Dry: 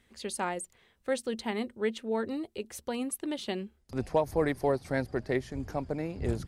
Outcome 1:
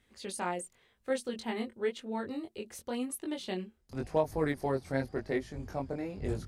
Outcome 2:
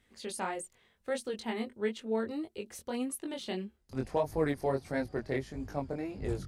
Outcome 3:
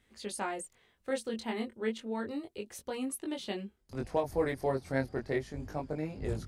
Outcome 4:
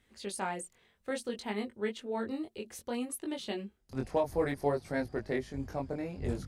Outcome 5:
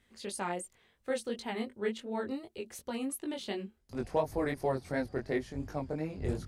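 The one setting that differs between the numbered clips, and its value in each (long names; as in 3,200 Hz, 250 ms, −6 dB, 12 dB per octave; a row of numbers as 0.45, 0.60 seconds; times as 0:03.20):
chorus effect, speed: 0.93, 1.6, 0.32, 0.59, 2.8 Hertz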